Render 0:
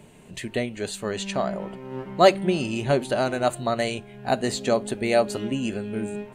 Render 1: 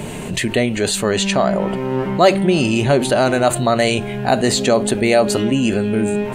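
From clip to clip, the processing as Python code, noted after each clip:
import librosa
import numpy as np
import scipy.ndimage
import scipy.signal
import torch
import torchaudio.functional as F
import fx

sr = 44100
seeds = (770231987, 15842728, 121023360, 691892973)

y = fx.env_flatten(x, sr, amount_pct=50)
y = F.gain(torch.from_numpy(y), 2.5).numpy()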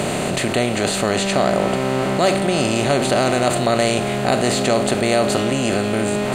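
y = fx.bin_compress(x, sr, power=0.4)
y = F.gain(torch.from_numpy(y), -8.0).numpy()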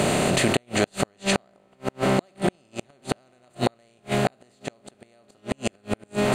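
y = fx.gate_flip(x, sr, shuts_db=-8.0, range_db=-41)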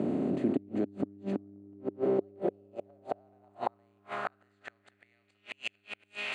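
y = fx.dmg_buzz(x, sr, base_hz=100.0, harmonics=4, level_db=-42.0, tilt_db=-6, odd_only=False)
y = fx.filter_sweep_bandpass(y, sr, from_hz=280.0, to_hz=2600.0, start_s=1.56, end_s=5.56, q=3.3)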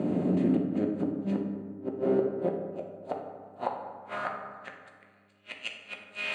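y = fx.rev_fdn(x, sr, rt60_s=1.6, lf_ratio=1.2, hf_ratio=0.45, size_ms=33.0, drr_db=0.5)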